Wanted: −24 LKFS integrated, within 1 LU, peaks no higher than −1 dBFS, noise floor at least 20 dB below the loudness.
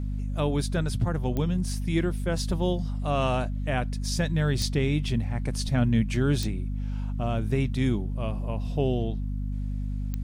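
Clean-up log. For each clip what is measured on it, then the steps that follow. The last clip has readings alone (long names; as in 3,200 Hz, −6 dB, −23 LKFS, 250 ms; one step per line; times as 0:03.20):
number of clicks 4; mains hum 50 Hz; hum harmonics up to 250 Hz; level of the hum −27 dBFS; integrated loudness −28.0 LKFS; sample peak −12.0 dBFS; target loudness −24.0 LKFS
→ click removal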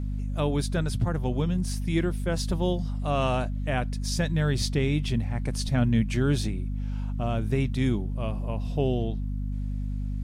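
number of clicks 0; mains hum 50 Hz; hum harmonics up to 250 Hz; level of the hum −27 dBFS
→ hum removal 50 Hz, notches 5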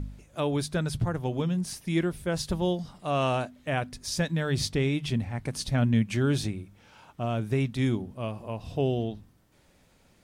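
mains hum none found; integrated loudness −29.0 LKFS; sample peak −13.5 dBFS; target loudness −24.0 LKFS
→ level +5 dB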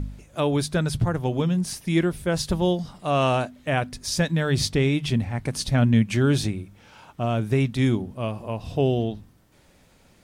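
integrated loudness −24.0 LKFS; sample peak −8.5 dBFS; background noise floor −57 dBFS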